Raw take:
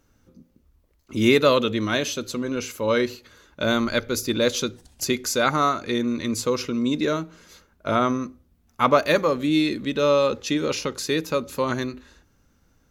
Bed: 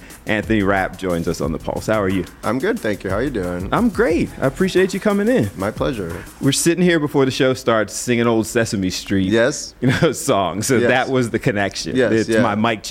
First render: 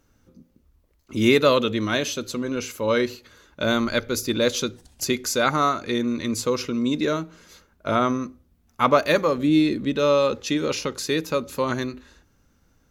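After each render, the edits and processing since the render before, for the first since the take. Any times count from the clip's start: 9.38–9.96 tilt shelf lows +3.5 dB, about 850 Hz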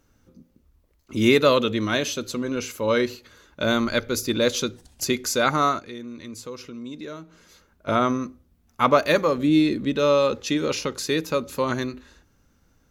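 5.79–7.88 compressor 1.5:1, threshold -56 dBFS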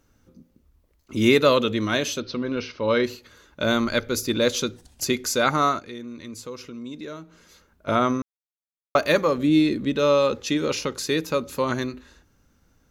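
2.2–3.04 steep low-pass 5500 Hz 72 dB/oct; 8.22–8.95 mute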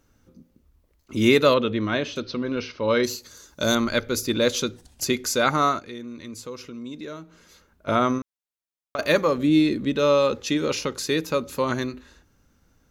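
1.54–2.16 air absorption 200 m; 3.03–3.75 resonant high shelf 4000 Hz +11.5 dB, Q 1.5; 8.18–8.99 compressor, threshold -27 dBFS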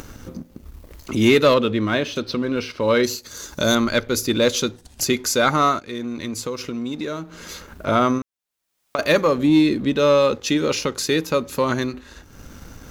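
upward compressor, threshold -24 dBFS; sample leveller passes 1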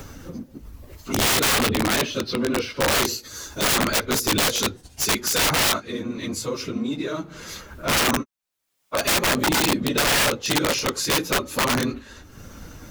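phase scrambler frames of 50 ms; wrapped overs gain 14.5 dB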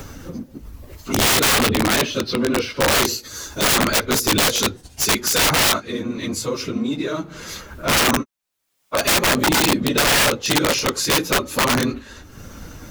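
gain +3.5 dB

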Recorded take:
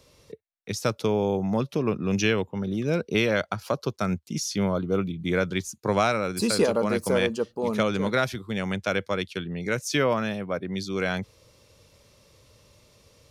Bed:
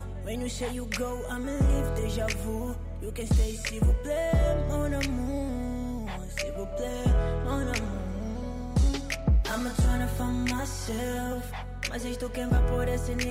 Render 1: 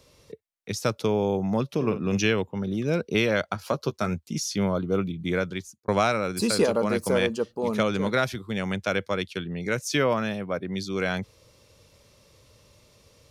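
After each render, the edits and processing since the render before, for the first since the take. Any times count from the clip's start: 1.75–2.18 doubler 50 ms -10.5 dB; 3.54–4.34 doubler 13 ms -9 dB; 5.07–5.88 fade out equal-power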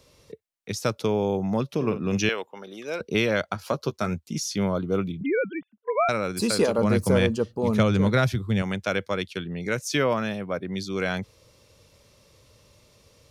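2.29–3.01 HPF 560 Hz; 5.21–6.09 sine-wave speech; 6.78–8.62 bell 100 Hz +12.5 dB 1.8 oct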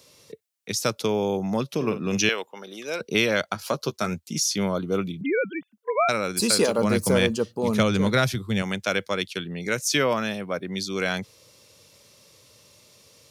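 HPF 120 Hz; high shelf 2900 Hz +8.5 dB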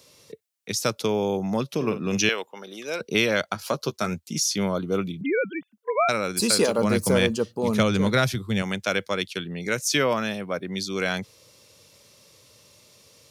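nothing audible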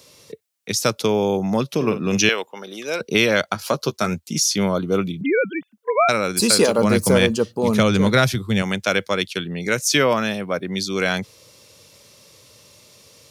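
gain +5 dB; limiter -3 dBFS, peak gain reduction 2 dB

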